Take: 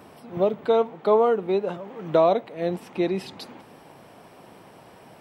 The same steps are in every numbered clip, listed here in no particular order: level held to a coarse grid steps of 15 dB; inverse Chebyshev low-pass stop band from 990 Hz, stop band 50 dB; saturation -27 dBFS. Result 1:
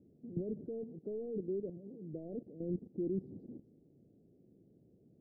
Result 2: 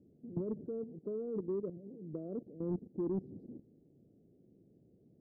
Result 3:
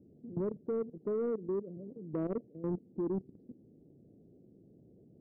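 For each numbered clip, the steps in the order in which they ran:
level held to a coarse grid > saturation > inverse Chebyshev low-pass; level held to a coarse grid > inverse Chebyshev low-pass > saturation; inverse Chebyshev low-pass > level held to a coarse grid > saturation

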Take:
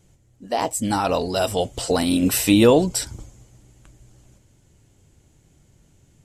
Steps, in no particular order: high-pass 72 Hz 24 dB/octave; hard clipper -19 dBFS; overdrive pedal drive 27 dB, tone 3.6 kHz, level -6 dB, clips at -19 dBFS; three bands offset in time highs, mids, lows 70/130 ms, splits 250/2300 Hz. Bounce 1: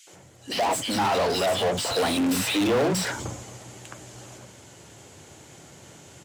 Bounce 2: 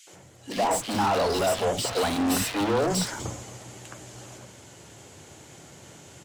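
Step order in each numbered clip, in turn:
three bands offset in time > hard clipper > overdrive pedal > high-pass; hard clipper > high-pass > overdrive pedal > three bands offset in time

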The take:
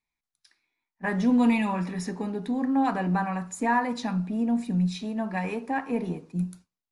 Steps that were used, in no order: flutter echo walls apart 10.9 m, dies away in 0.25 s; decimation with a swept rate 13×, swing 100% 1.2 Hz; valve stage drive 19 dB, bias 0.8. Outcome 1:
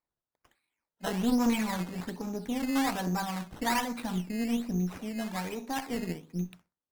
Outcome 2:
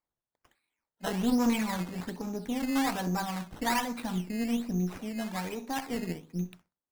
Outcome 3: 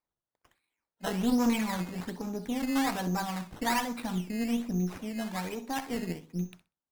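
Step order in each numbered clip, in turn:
flutter echo > decimation with a swept rate > valve stage; valve stage > flutter echo > decimation with a swept rate; decimation with a swept rate > valve stage > flutter echo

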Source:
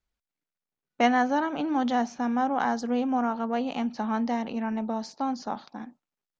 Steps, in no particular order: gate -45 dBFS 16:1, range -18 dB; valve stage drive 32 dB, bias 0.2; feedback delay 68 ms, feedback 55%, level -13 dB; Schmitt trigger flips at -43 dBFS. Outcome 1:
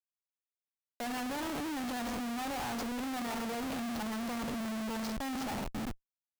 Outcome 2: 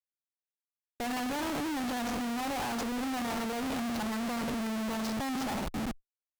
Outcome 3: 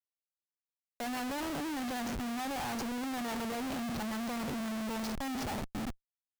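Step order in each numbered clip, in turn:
feedback delay > valve stage > gate > Schmitt trigger; feedback delay > Schmitt trigger > valve stage > gate; valve stage > gate > feedback delay > Schmitt trigger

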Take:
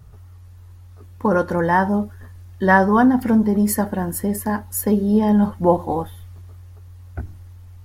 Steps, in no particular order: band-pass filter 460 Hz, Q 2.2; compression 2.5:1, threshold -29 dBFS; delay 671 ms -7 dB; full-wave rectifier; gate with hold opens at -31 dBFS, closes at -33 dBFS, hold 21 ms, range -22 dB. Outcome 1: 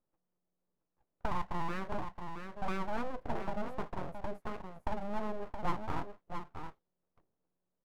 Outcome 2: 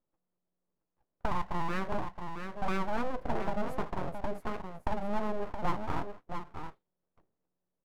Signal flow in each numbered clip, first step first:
compression > band-pass filter > gate with hold > delay > full-wave rectifier; band-pass filter > gate with hold > compression > delay > full-wave rectifier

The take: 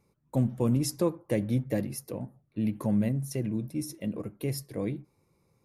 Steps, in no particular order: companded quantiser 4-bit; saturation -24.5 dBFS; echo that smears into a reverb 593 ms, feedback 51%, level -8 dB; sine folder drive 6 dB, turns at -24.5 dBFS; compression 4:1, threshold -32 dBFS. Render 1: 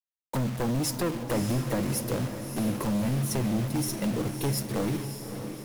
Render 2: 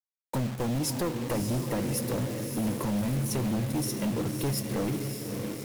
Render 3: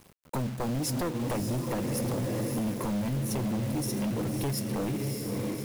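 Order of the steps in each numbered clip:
saturation > compression > companded quantiser > sine folder > echo that smears into a reverb; compression > echo that smears into a reverb > companded quantiser > saturation > sine folder; echo that smears into a reverb > compression > sine folder > companded quantiser > saturation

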